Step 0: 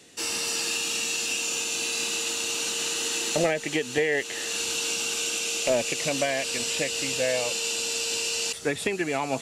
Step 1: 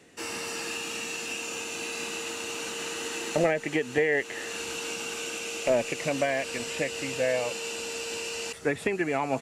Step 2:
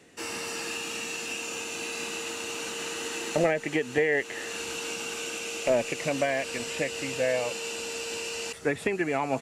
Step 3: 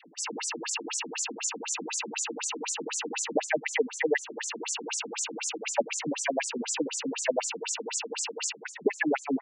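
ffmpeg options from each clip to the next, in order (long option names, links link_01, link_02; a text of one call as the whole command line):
ffmpeg -i in.wav -af "firequalizer=gain_entry='entry(2000,0);entry(3500,-10);entry(13000,-8)':delay=0.05:min_phase=1" out.wav
ffmpeg -i in.wav -af anull out.wav
ffmpeg -i in.wav -af "superequalizer=9b=2.24:15b=1.78,afftfilt=real='re*between(b*sr/1024,220*pow(7500/220,0.5+0.5*sin(2*PI*4*pts/sr))/1.41,220*pow(7500/220,0.5+0.5*sin(2*PI*4*pts/sr))*1.41)':imag='im*between(b*sr/1024,220*pow(7500/220,0.5+0.5*sin(2*PI*4*pts/sr))/1.41,220*pow(7500/220,0.5+0.5*sin(2*PI*4*pts/sr))*1.41)':win_size=1024:overlap=0.75,volume=7dB" out.wav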